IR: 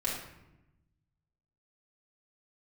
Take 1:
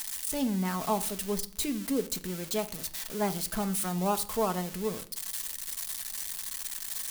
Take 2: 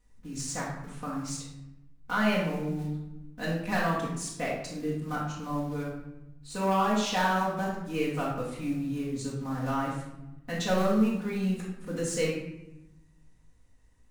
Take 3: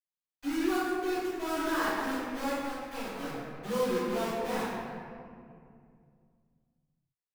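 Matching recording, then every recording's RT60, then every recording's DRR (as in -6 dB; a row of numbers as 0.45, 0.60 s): 2; 0.55, 0.95, 2.3 s; 7.5, -6.5, -18.0 dB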